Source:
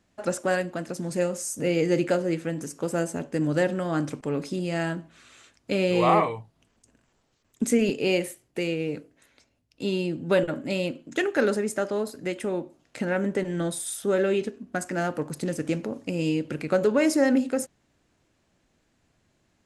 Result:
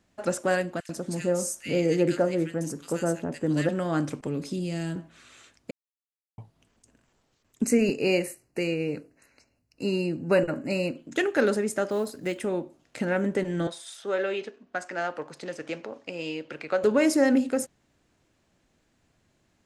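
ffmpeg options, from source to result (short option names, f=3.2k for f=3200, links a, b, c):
-filter_complex "[0:a]asettb=1/sr,asplit=3[a][b][c];[a]atrim=end=0.804[d];[b]atrim=start=0.8:end=3.69,asetpts=PTS-STARTPTS,afade=t=in:d=0.004:c=qsin,afade=t=out:st=2.886:d=0.004:c=qsin,acrossover=split=1700[e][f];[e]adelay=90[g];[g][f]amix=inputs=2:normalize=0,atrim=end_sample=127449[h];[c]atrim=start=3.686[i];[d][h]acrossfade=d=0.004:c1=hsin:c2=qsin[j];[j][i]acrossfade=d=0.004:c1=qsin:c2=hsin,asettb=1/sr,asplit=3[k][l][m];[k]atrim=end=4.274[n];[l]atrim=start=4.27:end=4.96,asetpts=PTS-STARTPTS,afade=t=in:d=0.004:c=qsin,afade=t=out:st=0.686:d=0.004:c=qsin,acrossover=split=380|3000[o][p][q];[p]acompressor=threshold=-46dB:ratio=2.5:attack=3.2:release=140:knee=2.83:detection=peak[r];[o][r][q]amix=inputs=3:normalize=0[s];[m]atrim=start=4.956[t];[n][s]acrossfade=d=0.004:c1=hsin:c2=qsin[u];[u][t]acrossfade=d=0.004:c1=qsin:c2=hsin,asettb=1/sr,asplit=3[v][w][x];[v]atrim=end=7.634[y];[w]atrim=start=7.63:end=10.97,asetpts=PTS-STARTPTS,afade=t=in:d=0.004:c=qsin,afade=t=out:st=3.336:d=0.004:c=qsin,asuperstop=centerf=3400:order=20:qfactor=3.4[z];[x]atrim=start=10.966[aa];[y][z]acrossfade=d=0.004:c1=hsin:c2=qsin[ab];[ab][aa]acrossfade=d=0.004:c1=qsin:c2=hsin,asettb=1/sr,asplit=3[ac][ad][ae];[ac]atrim=end=11.894[af];[ad]atrim=start=11.89:end=12.44,asetpts=PTS-STARTPTS,afade=t=in:d=0.004:c=qsin,afade=t=out:st=0.546:d=0.004:c=qsin,acrusher=bits=8:mode=log:mix=0:aa=0.000001[ag];[ae]atrim=start=12.436[ah];[af][ag]acrossfade=d=0.004:c1=hsin:c2=qsin[ai];[ai][ah]acrossfade=d=0.004:c1=qsin:c2=hsin,asettb=1/sr,asplit=3[aj][ak][al];[aj]atrim=end=13.674[am];[ak]atrim=start=13.67:end=16.84,asetpts=PTS-STARTPTS,afade=t=in:d=0.004:c=qsin,afade=t=out:st=3.166:d=0.004:c=qsin,acrossover=split=450 6100:gain=0.158 1 0.0708[an][ao][ap];[an][ao][ap]amix=inputs=3:normalize=0[aq];[al]atrim=start=16.836[ar];[am][aq]acrossfade=d=0.004:c1=hsin:c2=qsin[as];[as][ar]acrossfade=d=0.004:c1=qsin:c2=hsin,asplit=3[at][au][av];[at]atrim=end=5.71,asetpts=PTS-STARTPTS,afade=t=out:st=5.706:d=0.004:c=hsin[aw];[au]atrim=start=5.71:end=6.38,asetpts=PTS-STARTPTS,volume=0[ax];[av]atrim=start=6.38,asetpts=PTS-STARTPTS,afade=t=in:d=0.004:c=hsin[ay];[aw][ax][ay]concat=n=3:v=0:a=1"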